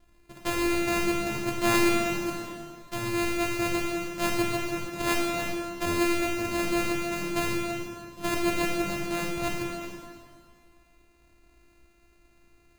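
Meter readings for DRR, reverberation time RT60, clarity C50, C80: -1.5 dB, 2.0 s, 1.0 dB, 2.5 dB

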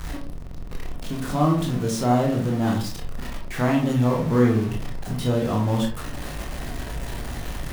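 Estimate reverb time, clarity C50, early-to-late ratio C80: 0.45 s, 6.5 dB, 12.0 dB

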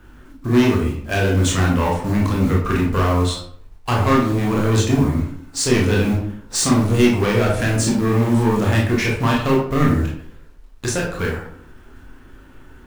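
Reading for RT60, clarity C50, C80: 0.60 s, 4.0 dB, 8.5 dB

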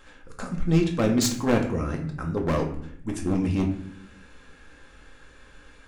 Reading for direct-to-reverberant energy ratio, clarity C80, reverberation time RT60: 1.0 dB, 12.0 dB, 0.70 s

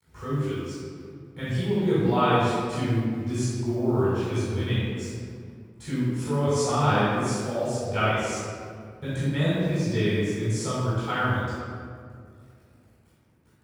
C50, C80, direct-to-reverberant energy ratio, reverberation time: -4.5 dB, -1.5 dB, -11.5 dB, 2.2 s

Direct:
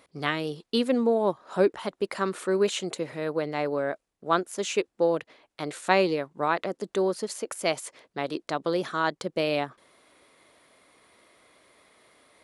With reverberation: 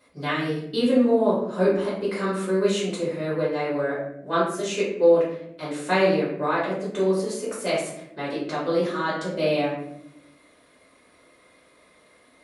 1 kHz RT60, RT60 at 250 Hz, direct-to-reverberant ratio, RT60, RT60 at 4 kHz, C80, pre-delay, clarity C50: 0.60 s, 1.3 s, -9.5 dB, 0.75 s, 0.45 s, 6.5 dB, 3 ms, 2.0 dB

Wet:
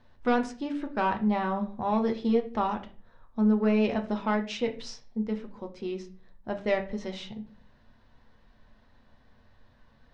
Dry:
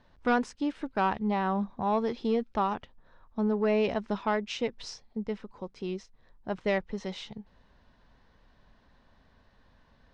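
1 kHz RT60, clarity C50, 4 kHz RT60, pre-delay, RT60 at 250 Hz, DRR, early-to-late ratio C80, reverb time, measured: 0.35 s, 13.5 dB, 0.30 s, 8 ms, 0.60 s, 4.0 dB, 18.0 dB, 0.40 s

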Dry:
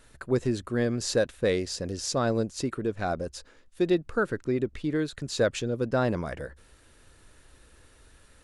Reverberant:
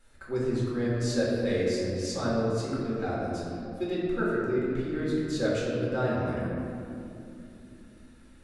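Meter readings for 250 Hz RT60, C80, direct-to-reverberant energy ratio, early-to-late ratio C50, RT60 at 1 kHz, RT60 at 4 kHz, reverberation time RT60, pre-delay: 4.9 s, 0.0 dB, -7.5 dB, -2.0 dB, 2.4 s, 1.5 s, 2.8 s, 3 ms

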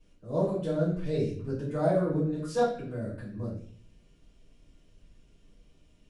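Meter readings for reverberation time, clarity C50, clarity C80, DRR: 0.50 s, 4.5 dB, 8.5 dB, -12.5 dB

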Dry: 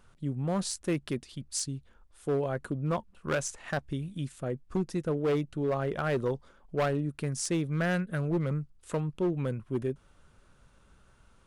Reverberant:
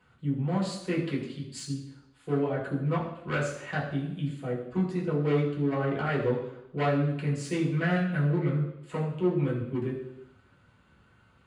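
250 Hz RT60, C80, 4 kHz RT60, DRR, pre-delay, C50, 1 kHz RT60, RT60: 0.80 s, 8.0 dB, 0.85 s, -6.0 dB, 3 ms, 6.0 dB, 0.80 s, 0.80 s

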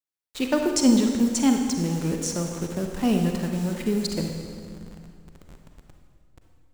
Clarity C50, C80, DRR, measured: 4.0 dB, 5.5 dB, 3.0 dB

